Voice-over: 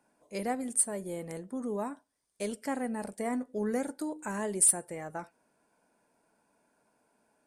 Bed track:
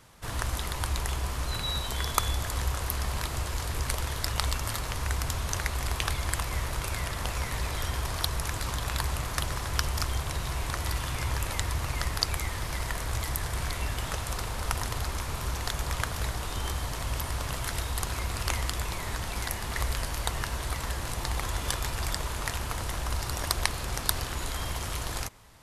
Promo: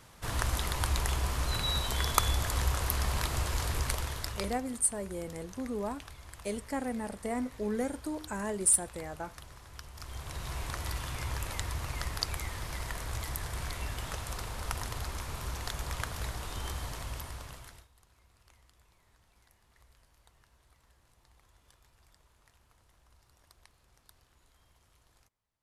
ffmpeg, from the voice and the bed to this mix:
-filter_complex "[0:a]adelay=4050,volume=-1dB[a];[1:a]volume=13.5dB,afade=t=out:st=3.67:d=0.98:silence=0.112202,afade=t=in:st=9.94:d=0.6:silence=0.211349,afade=t=out:st=16.88:d=1:silence=0.0398107[b];[a][b]amix=inputs=2:normalize=0"

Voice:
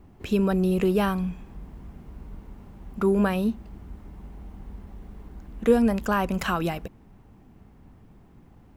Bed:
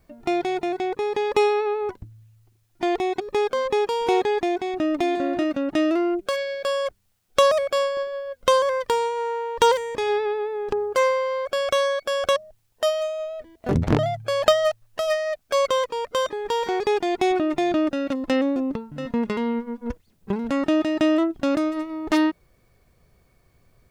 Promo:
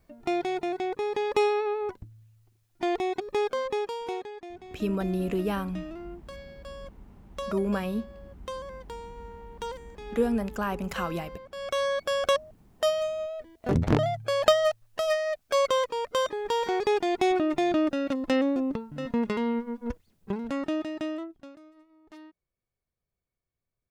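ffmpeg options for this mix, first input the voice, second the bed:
-filter_complex "[0:a]adelay=4500,volume=-6dB[a];[1:a]volume=11.5dB,afade=t=out:st=3.45:d=0.86:silence=0.188365,afade=t=in:st=11.51:d=0.46:silence=0.158489,afade=t=out:st=19.83:d=1.71:silence=0.0501187[b];[a][b]amix=inputs=2:normalize=0"

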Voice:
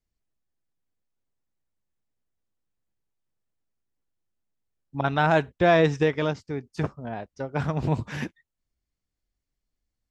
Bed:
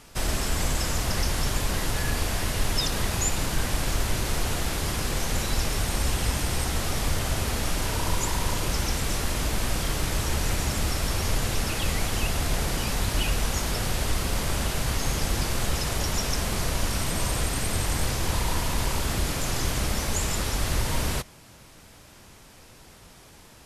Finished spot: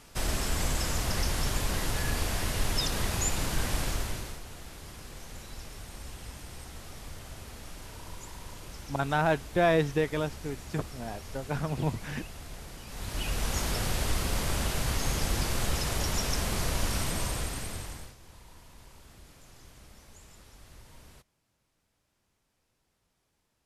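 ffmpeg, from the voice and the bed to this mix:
-filter_complex "[0:a]adelay=3950,volume=-5dB[a];[1:a]volume=11dB,afade=t=out:st=3.79:d=0.61:silence=0.199526,afade=t=in:st=12.87:d=0.72:silence=0.188365,afade=t=out:st=16.99:d=1.16:silence=0.0668344[b];[a][b]amix=inputs=2:normalize=0"

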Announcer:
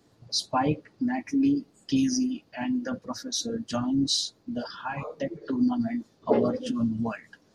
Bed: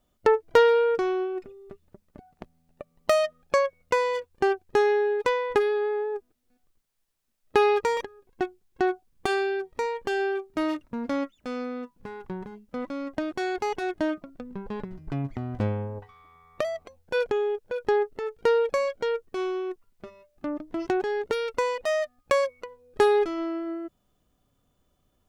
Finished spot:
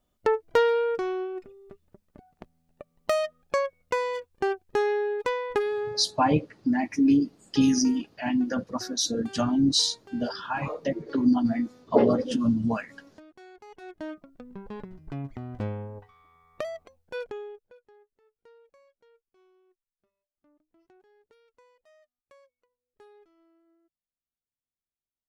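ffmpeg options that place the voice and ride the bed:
-filter_complex "[0:a]adelay=5650,volume=3dB[a];[1:a]volume=12.5dB,afade=t=out:st=5.82:d=0.24:silence=0.133352,afade=t=in:st=13.67:d=0.83:silence=0.158489,afade=t=out:st=16.75:d=1.1:silence=0.0334965[b];[a][b]amix=inputs=2:normalize=0"

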